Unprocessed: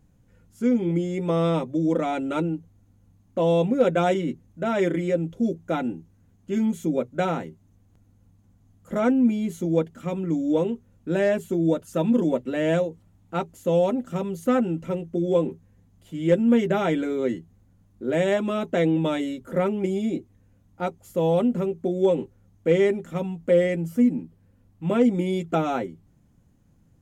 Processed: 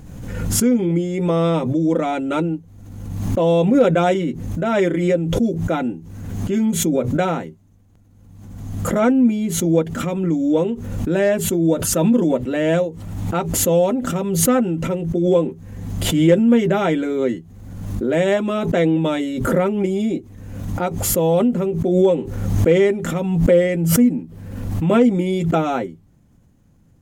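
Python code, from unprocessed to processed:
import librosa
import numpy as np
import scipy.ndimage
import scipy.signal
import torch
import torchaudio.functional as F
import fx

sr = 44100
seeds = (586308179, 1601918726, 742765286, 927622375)

y = fx.pre_swell(x, sr, db_per_s=40.0)
y = y * librosa.db_to_amplitude(4.5)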